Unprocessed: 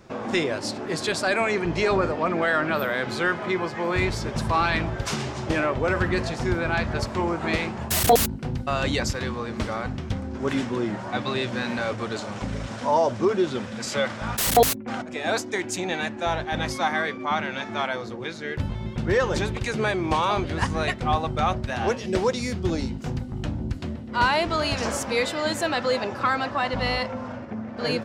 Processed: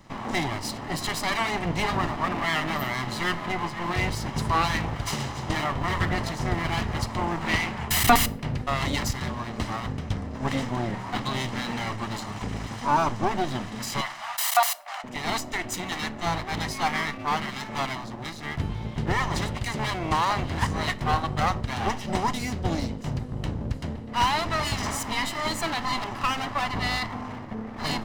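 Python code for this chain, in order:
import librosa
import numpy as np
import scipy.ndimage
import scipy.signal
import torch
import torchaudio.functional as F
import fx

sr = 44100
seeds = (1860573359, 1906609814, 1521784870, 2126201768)

y = fx.lower_of_two(x, sr, delay_ms=1.0)
y = fx.peak_eq(y, sr, hz=2200.0, db=6.0, octaves=1.4, at=(7.49, 8.67))
y = fx.ellip_highpass(y, sr, hz=640.0, order=4, stop_db=40, at=(14.01, 15.04))
y = fx.room_shoebox(y, sr, seeds[0], volume_m3=660.0, walls='furnished', distance_m=0.33)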